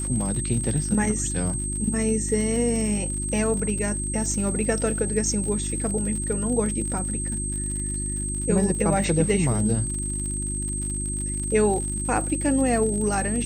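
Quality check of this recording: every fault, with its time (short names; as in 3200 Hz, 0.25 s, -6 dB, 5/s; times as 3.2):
crackle 60/s -30 dBFS
hum 50 Hz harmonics 7 -30 dBFS
tone 8300 Hz -29 dBFS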